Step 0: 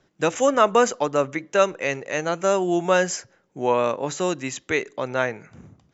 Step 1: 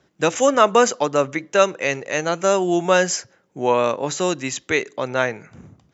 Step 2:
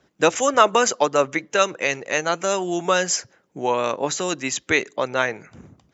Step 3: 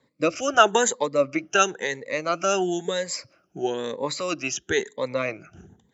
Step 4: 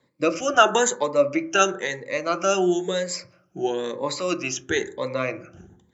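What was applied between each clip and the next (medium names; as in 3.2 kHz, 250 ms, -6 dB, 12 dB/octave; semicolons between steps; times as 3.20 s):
high-pass 46 Hz; dynamic bell 4.8 kHz, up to +4 dB, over -42 dBFS, Q 0.95; trim +2.5 dB
harmonic-percussive split percussive +8 dB; trim -5.5 dB
drifting ripple filter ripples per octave 0.99, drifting +1 Hz, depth 16 dB; rotary cabinet horn 1.1 Hz, later 7 Hz, at 4.49 s; trim -3.5 dB
reverberation RT60 0.55 s, pre-delay 3 ms, DRR 8 dB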